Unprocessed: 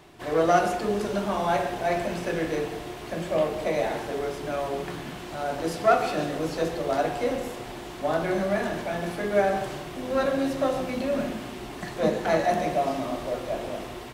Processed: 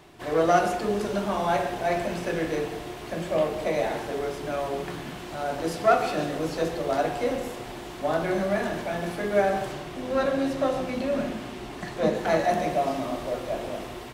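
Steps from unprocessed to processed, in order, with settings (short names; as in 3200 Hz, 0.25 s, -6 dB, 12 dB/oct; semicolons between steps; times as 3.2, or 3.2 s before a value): 9.72–12.15 high shelf 9900 Hz -6.5 dB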